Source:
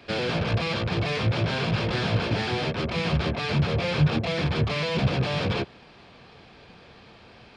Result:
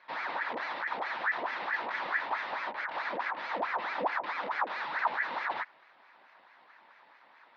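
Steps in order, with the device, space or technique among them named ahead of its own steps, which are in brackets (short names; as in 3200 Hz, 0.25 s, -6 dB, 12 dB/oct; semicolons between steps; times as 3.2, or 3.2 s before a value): voice changer toy (ring modulator with a swept carrier 1100 Hz, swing 70%, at 4.6 Hz; speaker cabinet 430–3600 Hz, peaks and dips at 440 Hz -6 dB, 930 Hz +7 dB, 1800 Hz +4 dB, 3000 Hz -6 dB); gain -7 dB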